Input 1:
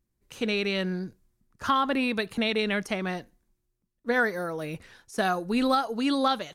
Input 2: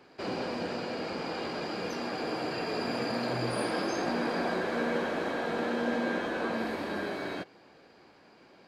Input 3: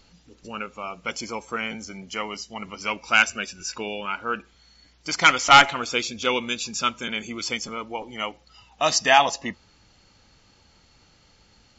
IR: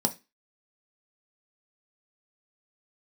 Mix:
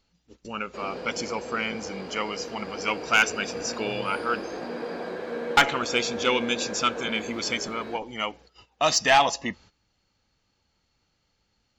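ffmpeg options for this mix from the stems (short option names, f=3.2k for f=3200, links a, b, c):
-filter_complex "[1:a]equalizer=f=470:t=o:w=0.31:g=9,adelay=550,volume=-5.5dB[a];[2:a]asoftclip=type=tanh:threshold=-10.5dB,volume=0.5dB,asplit=3[b][c][d];[b]atrim=end=4.59,asetpts=PTS-STARTPTS,afade=t=out:st=4.586:d=0.004:c=hsin[e];[c]atrim=start=4.59:end=5.57,asetpts=PTS-STARTPTS,volume=0[f];[d]atrim=start=5.57,asetpts=PTS-STARTPTS,afade=t=in:d=0.004:c=hsin[g];[e][f][g]concat=n=3:v=0:a=1[h];[a][h]amix=inputs=2:normalize=0,agate=range=-15dB:threshold=-49dB:ratio=16:detection=peak,equalizer=f=10k:w=1.9:g=-5"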